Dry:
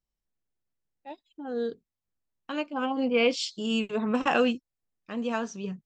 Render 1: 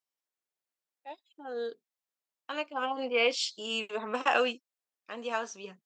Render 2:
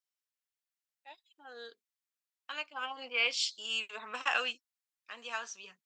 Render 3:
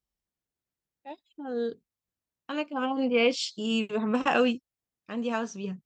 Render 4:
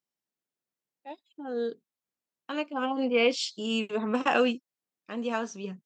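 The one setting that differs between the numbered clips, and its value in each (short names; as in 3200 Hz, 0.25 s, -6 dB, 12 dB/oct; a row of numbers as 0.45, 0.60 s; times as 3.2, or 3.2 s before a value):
HPF, cutoff: 530, 1400, 42, 210 Hz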